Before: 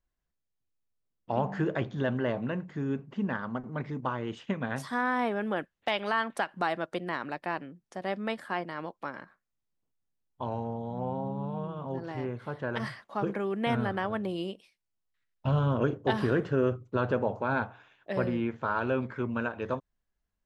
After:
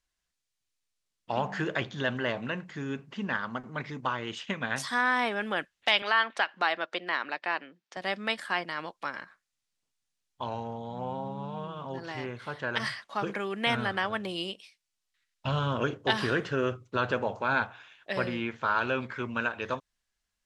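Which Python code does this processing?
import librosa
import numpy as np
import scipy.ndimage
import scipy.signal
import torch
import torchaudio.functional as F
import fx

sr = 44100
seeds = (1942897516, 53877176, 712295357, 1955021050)

y = fx.bandpass_edges(x, sr, low_hz=290.0, high_hz=4200.0, at=(6.02, 7.97))
y = scipy.signal.sosfilt(scipy.signal.butter(2, 8400.0, 'lowpass', fs=sr, output='sos'), y)
y = fx.tilt_shelf(y, sr, db=-8.5, hz=1300.0)
y = F.gain(torch.from_numpy(y), 4.0).numpy()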